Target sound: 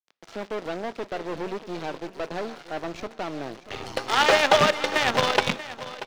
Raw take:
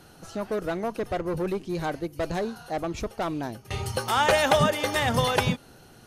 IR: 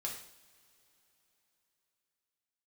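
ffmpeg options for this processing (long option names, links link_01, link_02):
-filter_complex "[0:a]acrusher=bits=4:dc=4:mix=0:aa=0.000001,acrossover=split=220 5800:gain=0.251 1 0.0794[link_01][link_02][link_03];[link_01][link_02][link_03]amix=inputs=3:normalize=0,aecho=1:1:635|1270|1905:0.178|0.0533|0.016,asplit=2[link_04][link_05];[1:a]atrim=start_sample=2205[link_06];[link_05][link_06]afir=irnorm=-1:irlink=0,volume=-16.5dB[link_07];[link_04][link_07]amix=inputs=2:normalize=0,volume=2dB"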